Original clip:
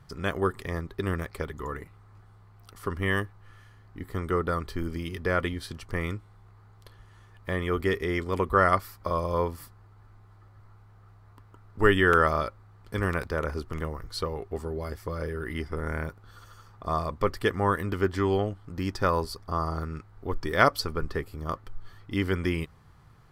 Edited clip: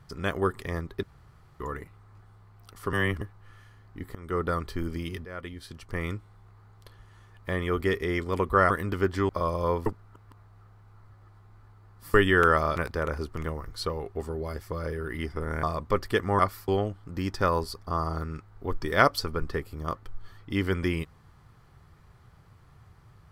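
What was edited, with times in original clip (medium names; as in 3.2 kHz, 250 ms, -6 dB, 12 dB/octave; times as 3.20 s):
1.03–1.60 s: room tone
2.93–3.21 s: reverse
4.15–4.43 s: fade in, from -23.5 dB
5.25–6.16 s: fade in, from -18 dB
8.70–8.99 s: swap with 17.70–18.29 s
9.56–11.84 s: reverse
12.46–13.12 s: delete
15.99–16.94 s: delete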